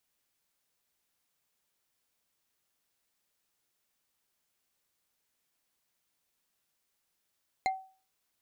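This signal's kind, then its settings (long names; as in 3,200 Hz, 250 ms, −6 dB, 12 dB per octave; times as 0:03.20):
struck wood bar, lowest mode 762 Hz, decay 0.39 s, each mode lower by 5 dB, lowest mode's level −23.5 dB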